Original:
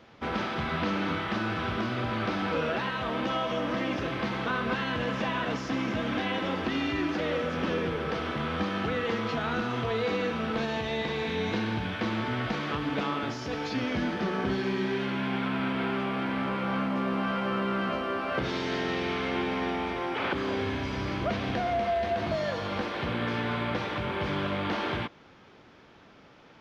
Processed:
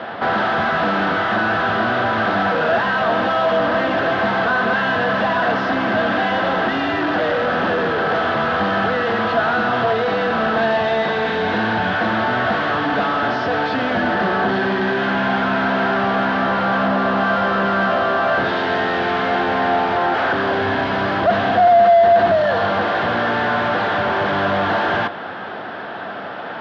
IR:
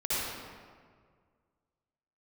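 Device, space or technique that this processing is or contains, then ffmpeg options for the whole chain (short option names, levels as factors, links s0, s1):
overdrive pedal into a guitar cabinet: -filter_complex "[0:a]asplit=2[s0][s1];[s1]highpass=f=720:p=1,volume=39.8,asoftclip=type=tanh:threshold=0.158[s2];[s0][s2]amix=inputs=2:normalize=0,lowpass=f=2100:p=1,volume=0.501,highpass=84,equalizer=f=97:t=q:w=4:g=8,equalizer=f=200:t=q:w=4:g=5,equalizer=f=700:t=q:w=4:g=10,equalizer=f=1600:t=q:w=4:g=7,equalizer=f=2300:t=q:w=4:g=-8,lowpass=f=4200:w=0.5412,lowpass=f=4200:w=1.3066,volume=1.26"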